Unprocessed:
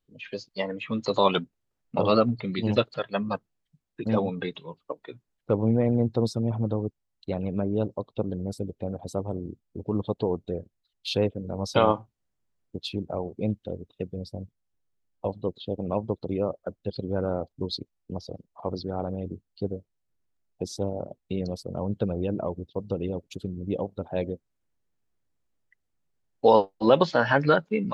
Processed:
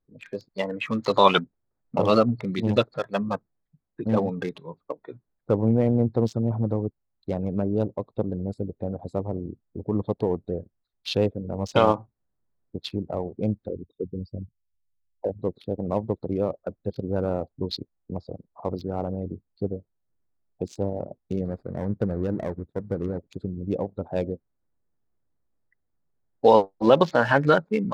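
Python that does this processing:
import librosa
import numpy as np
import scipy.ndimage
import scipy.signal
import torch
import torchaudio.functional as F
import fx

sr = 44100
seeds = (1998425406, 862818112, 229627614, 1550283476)

y = fx.peak_eq(x, sr, hz=1700.0, db=8.0, octaves=1.6, at=(0.73, 1.41))
y = fx.envelope_sharpen(y, sr, power=3.0, at=(13.69, 15.39))
y = fx.median_filter(y, sr, points=41, at=(21.45, 23.18))
y = fx.wiener(y, sr, points=15)
y = y * 10.0 ** (2.0 / 20.0)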